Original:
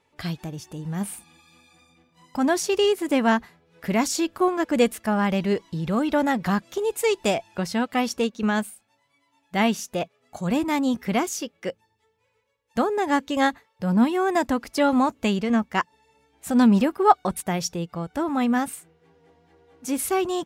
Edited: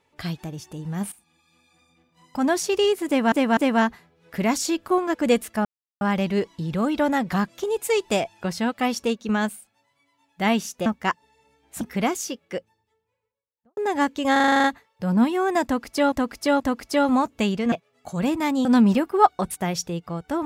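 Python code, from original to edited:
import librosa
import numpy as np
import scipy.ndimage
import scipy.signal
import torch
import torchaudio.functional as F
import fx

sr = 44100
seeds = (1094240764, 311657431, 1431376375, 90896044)

y = fx.studio_fade_out(x, sr, start_s=11.54, length_s=1.35)
y = fx.edit(y, sr, fx.fade_in_from(start_s=1.12, length_s=1.36, floor_db=-15.0),
    fx.repeat(start_s=3.07, length_s=0.25, count=3),
    fx.insert_silence(at_s=5.15, length_s=0.36),
    fx.swap(start_s=10.0, length_s=0.93, other_s=15.56, other_length_s=0.95),
    fx.stutter(start_s=13.44, slice_s=0.04, count=9),
    fx.repeat(start_s=14.44, length_s=0.48, count=3), tone=tone)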